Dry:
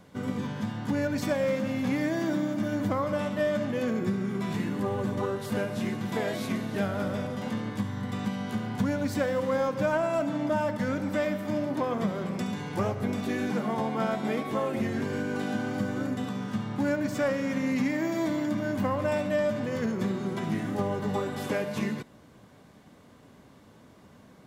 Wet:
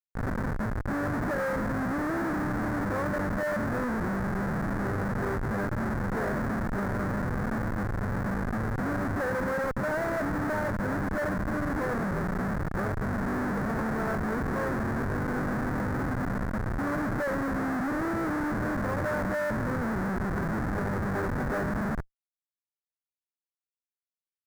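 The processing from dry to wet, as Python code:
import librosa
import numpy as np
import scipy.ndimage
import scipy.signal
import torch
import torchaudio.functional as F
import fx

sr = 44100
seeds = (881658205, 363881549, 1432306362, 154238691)

y = fx.schmitt(x, sr, flips_db=-30.0)
y = fx.high_shelf_res(y, sr, hz=2200.0, db=-10.0, q=3.0)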